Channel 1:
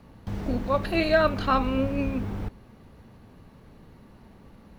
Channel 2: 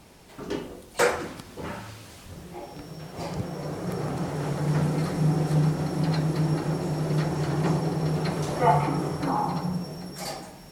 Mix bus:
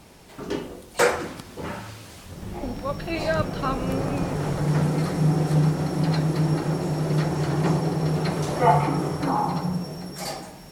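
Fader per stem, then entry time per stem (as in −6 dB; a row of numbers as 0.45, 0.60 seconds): −4.5, +2.5 decibels; 2.15, 0.00 seconds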